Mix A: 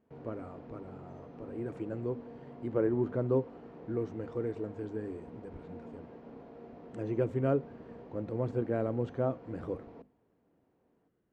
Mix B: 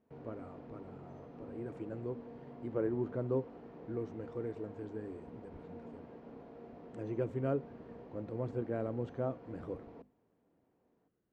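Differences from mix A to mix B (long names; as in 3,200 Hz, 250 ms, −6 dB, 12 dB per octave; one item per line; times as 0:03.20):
speech −5.0 dB
reverb: off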